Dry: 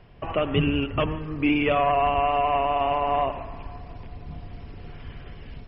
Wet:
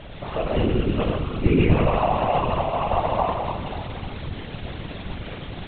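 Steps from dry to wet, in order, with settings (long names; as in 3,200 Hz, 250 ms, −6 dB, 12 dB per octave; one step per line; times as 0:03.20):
high-shelf EQ 2,700 Hz −9 dB
bit-depth reduction 6 bits, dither triangular
four-comb reverb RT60 2 s, combs from 27 ms, DRR −2 dB
hum with harmonics 120 Hz, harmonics 6, −40 dBFS −1 dB per octave
linear-prediction vocoder at 8 kHz whisper
low-shelf EQ 120 Hz +6.5 dB
random phases in short frames
level −3.5 dB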